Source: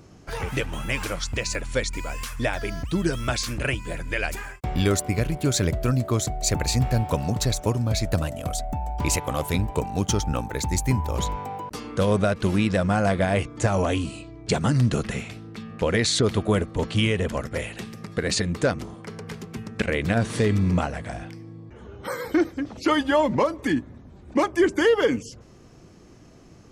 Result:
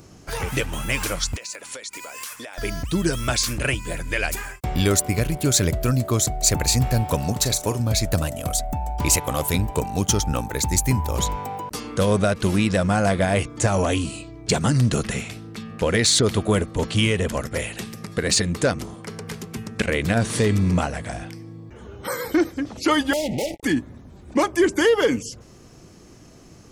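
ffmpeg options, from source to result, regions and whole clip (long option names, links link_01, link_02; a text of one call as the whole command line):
ffmpeg -i in.wav -filter_complex "[0:a]asettb=1/sr,asplit=3[link_01][link_02][link_03];[link_01]atrim=end=1.364[link_04];[link_02]atrim=start=1.36:end=2.58,asetpts=PTS-STARTPTS,afade=type=in:duration=0.004:curve=qsin,afade=type=out:start_time=1.216:duration=0.004:curve=qsin,highpass=400,acompressor=threshold=-35dB:ratio=20:attack=3.2:release=140:knee=1:detection=peak[link_05];[link_03]atrim=start=2.576[link_06];[link_04][link_05]acrossfade=duration=0.004:curve1=hsin:curve2=qsin[link_07];[link_07][link_06]acrossfade=duration=0.004:curve1=qsin:curve2=hsin,asettb=1/sr,asplit=3[link_08][link_09][link_10];[link_08]atrim=end=7.324[link_11];[link_09]atrim=start=7.32:end=7.8,asetpts=PTS-STARTPTS,afade=type=in:duration=0.004:curve=qsin,afade=type=out:start_time=0.476:duration=0.004:curve=qsin,lowshelf=frequency=200:gain=-6.5,asplit=2[link_12][link_13];[link_13]adelay=41,volume=-13.5dB[link_14];[link_12][link_14]amix=inputs=2:normalize=0,atrim=end_sample=21168[link_15];[link_10]atrim=start=7.796[link_16];[link_11][link_15]acrossfade=duration=0.004:curve1=hsin:curve2=qsin[link_17];[link_17][link_16]acrossfade=duration=0.004:curve1=qsin:curve2=hsin,asettb=1/sr,asplit=3[link_18][link_19][link_20];[link_18]atrim=end=23.134[link_21];[link_19]atrim=start=23.13:end=23.63,asetpts=PTS-STARTPTS,afade=type=in:duration=0.004:curve=qsin,afade=type=out:start_time=0.496:duration=0.004:curve=qsin,acompressor=threshold=-27dB:ratio=2:attack=3.2:release=140:knee=1:detection=peak,acrusher=bits=4:mix=0:aa=0.5,asuperstop=centerf=1300:order=20:qfactor=1.2[link_22];[link_20]atrim=start=23.626[link_23];[link_21][link_22]acrossfade=duration=0.004:curve1=hsin:curve2=qsin[link_24];[link_24][link_23]acrossfade=duration=0.004:curve1=qsin:curve2=hsin,highshelf=frequency=5800:gain=10,acontrast=69,volume=-4.5dB" out.wav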